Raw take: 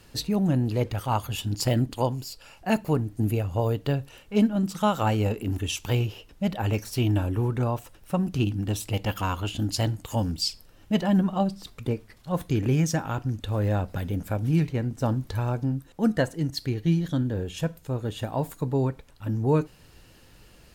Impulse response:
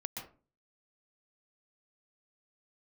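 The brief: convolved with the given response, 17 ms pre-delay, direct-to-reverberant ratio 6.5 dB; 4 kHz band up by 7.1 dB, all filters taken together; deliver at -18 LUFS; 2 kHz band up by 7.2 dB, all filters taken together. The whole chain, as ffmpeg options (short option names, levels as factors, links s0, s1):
-filter_complex "[0:a]equalizer=f=2000:t=o:g=7.5,equalizer=f=4000:t=o:g=7,asplit=2[s0][s1];[1:a]atrim=start_sample=2205,adelay=17[s2];[s1][s2]afir=irnorm=-1:irlink=0,volume=0.501[s3];[s0][s3]amix=inputs=2:normalize=0,volume=2.11"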